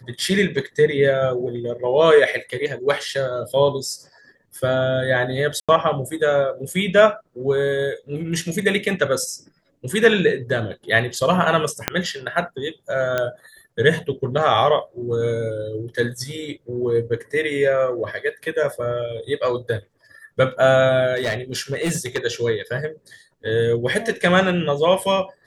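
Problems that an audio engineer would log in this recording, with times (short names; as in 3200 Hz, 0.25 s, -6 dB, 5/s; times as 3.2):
5.6–5.69 gap 86 ms
11.88 pop -2 dBFS
13.18 pop -8 dBFS
21.15–22.25 clipped -17.5 dBFS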